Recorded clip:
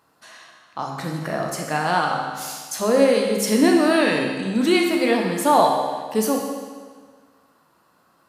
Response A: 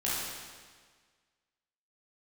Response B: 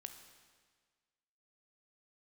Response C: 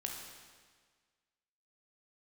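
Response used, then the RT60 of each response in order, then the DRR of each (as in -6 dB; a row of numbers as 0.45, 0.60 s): C; 1.6, 1.6, 1.6 s; -8.5, 6.5, 0.5 dB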